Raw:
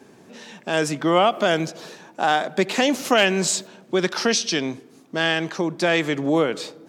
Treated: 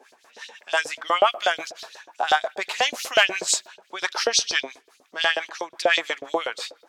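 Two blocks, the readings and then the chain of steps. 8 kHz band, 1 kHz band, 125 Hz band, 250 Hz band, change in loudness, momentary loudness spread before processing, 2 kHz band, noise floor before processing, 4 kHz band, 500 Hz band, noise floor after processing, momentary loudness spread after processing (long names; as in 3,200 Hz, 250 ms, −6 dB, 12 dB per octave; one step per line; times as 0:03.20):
0.0 dB, −1.0 dB, below −25 dB, −18.5 dB, −1.5 dB, 13 LU, +0.5 dB, −51 dBFS, +1.0 dB, −5.0 dB, −62 dBFS, 18 LU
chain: two-band tremolo in antiphase 5.8 Hz, depth 70%, crossover 740 Hz
auto-filter high-pass saw up 8.2 Hz 490–5,000 Hz
level +1 dB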